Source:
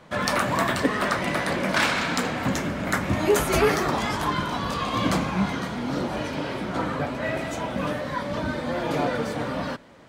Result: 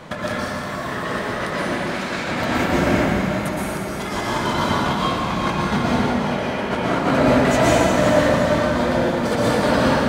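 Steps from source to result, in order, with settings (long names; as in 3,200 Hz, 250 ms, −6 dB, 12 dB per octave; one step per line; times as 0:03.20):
gain on a spectral selection 0:05.83–0:06.71, 380–3,400 Hz +7 dB
compressor whose output falls as the input rises −31 dBFS, ratio −0.5
gate pattern "xxx..xx." 139 BPM
on a send: delay that swaps between a low-pass and a high-pass 179 ms, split 1,000 Hz, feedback 73%, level −7 dB
on the sum: dense smooth reverb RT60 2.5 s, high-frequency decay 0.8×, pre-delay 105 ms, DRR −7 dB
level +4.5 dB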